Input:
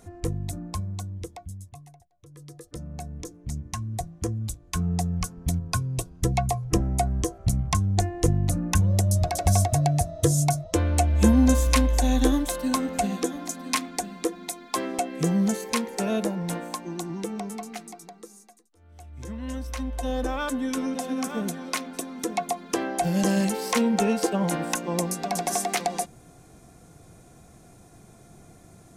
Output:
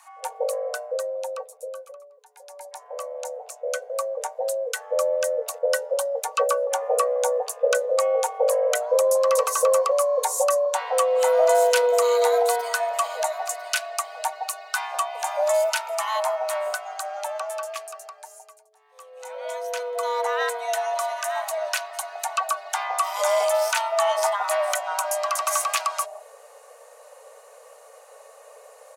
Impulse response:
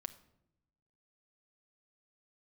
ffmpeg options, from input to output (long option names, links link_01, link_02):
-filter_complex "[0:a]asplit=2[link_01][link_02];[link_02]alimiter=limit=-13.5dB:level=0:latency=1:release=378,volume=-2.5dB[link_03];[link_01][link_03]amix=inputs=2:normalize=0,acrossover=split=330[link_04][link_05];[link_04]adelay=160[link_06];[link_06][link_05]amix=inputs=2:normalize=0,acontrast=52,afreqshift=430,volume=-7.5dB"